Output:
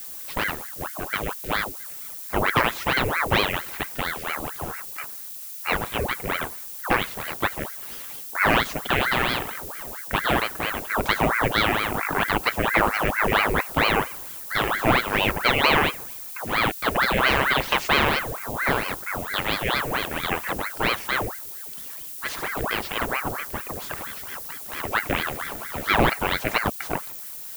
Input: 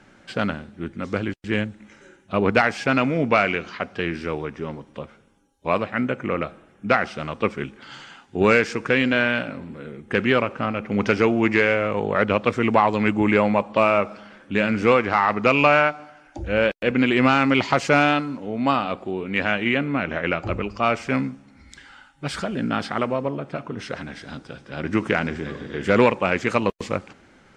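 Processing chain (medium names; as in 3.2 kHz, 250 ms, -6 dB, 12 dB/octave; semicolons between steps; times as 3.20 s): vibrato 0.43 Hz 8.9 cents; added noise violet -34 dBFS; ring modulator with a swept carrier 1 kHz, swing 85%, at 4.4 Hz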